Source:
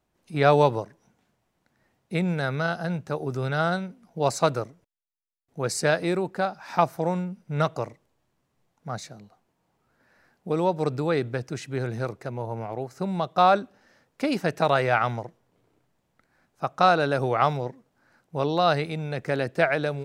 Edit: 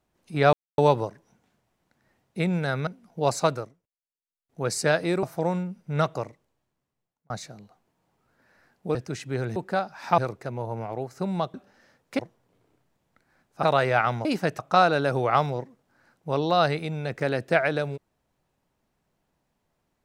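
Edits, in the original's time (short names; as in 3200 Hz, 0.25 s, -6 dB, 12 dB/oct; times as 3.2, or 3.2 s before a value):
0.53 insert silence 0.25 s
2.62–3.86 cut
4.4–5.62 dip -18.5 dB, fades 0.42 s
6.22–6.84 move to 11.98
7.68–8.91 fade out
10.56–11.37 cut
13.34–13.61 cut
14.26–14.6 swap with 15.22–16.66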